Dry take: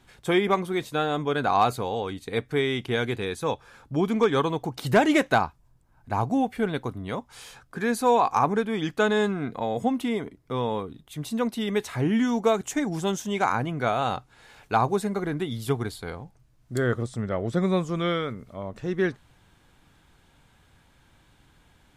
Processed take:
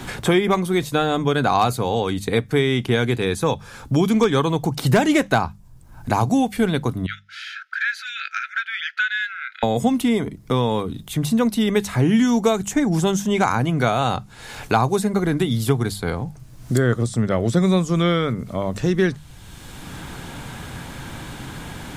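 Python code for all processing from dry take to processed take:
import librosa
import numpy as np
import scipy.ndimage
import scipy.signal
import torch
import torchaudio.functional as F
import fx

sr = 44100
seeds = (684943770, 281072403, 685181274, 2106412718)

y = fx.chain(x, sr, fx.brickwall_highpass(low_hz=1300.0),
    fx.air_absorb(metres=280.0), at=(7.06, 9.63))
y = fx.bass_treble(y, sr, bass_db=6, treble_db=6)
y = fx.hum_notches(y, sr, base_hz=50, count=4)
y = fx.band_squash(y, sr, depth_pct=70)
y = F.gain(torch.from_numpy(y), 4.5).numpy()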